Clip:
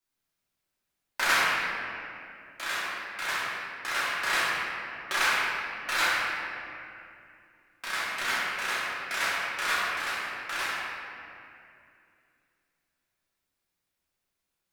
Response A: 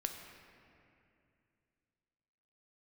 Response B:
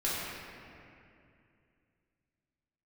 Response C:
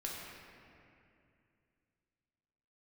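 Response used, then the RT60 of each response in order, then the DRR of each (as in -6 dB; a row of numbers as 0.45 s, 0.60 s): B; 2.5 s, 2.5 s, 2.5 s; 3.5 dB, -9.5 dB, -4.0 dB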